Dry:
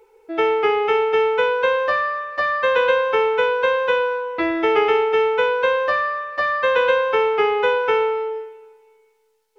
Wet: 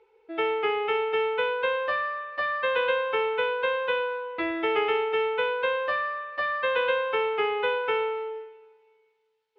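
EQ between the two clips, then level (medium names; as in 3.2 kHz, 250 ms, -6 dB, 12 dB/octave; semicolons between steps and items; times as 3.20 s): high-pass 40 Hz; resonant low-pass 3.3 kHz, resonance Q 1.6; -8.5 dB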